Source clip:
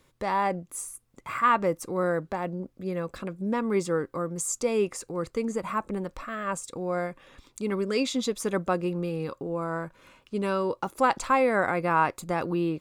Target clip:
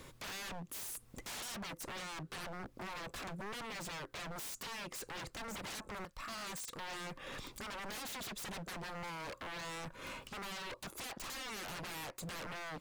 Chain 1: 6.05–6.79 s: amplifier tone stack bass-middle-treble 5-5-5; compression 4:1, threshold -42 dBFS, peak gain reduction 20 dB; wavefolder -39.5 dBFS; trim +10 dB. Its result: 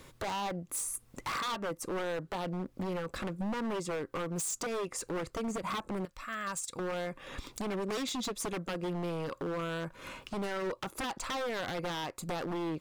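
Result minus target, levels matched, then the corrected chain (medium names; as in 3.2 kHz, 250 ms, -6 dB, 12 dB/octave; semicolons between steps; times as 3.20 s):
wavefolder: distortion -23 dB
6.05–6.79 s: amplifier tone stack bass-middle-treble 5-5-5; compression 4:1, threshold -42 dBFS, peak gain reduction 20 dB; wavefolder -49.5 dBFS; trim +10 dB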